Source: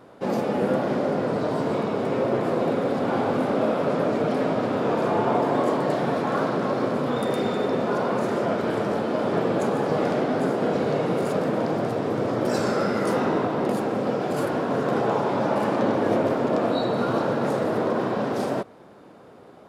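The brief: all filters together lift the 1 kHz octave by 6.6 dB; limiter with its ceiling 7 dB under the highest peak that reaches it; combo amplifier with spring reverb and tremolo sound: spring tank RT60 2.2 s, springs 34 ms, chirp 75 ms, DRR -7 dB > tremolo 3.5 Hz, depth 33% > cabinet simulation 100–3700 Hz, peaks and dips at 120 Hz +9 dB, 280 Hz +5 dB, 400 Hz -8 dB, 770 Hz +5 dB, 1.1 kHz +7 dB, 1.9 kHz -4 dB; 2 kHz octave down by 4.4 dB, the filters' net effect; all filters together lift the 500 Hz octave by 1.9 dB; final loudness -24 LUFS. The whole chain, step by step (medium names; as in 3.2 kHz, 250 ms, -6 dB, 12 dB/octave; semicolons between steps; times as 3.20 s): peaking EQ 500 Hz +3 dB; peaking EQ 1 kHz +3 dB; peaking EQ 2 kHz -8 dB; peak limiter -15 dBFS; spring tank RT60 2.2 s, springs 34 ms, chirp 75 ms, DRR -7 dB; tremolo 3.5 Hz, depth 33%; cabinet simulation 100–3700 Hz, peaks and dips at 120 Hz +9 dB, 280 Hz +5 dB, 400 Hz -8 dB, 770 Hz +5 dB, 1.1 kHz +7 dB, 1.9 kHz -4 dB; trim -7.5 dB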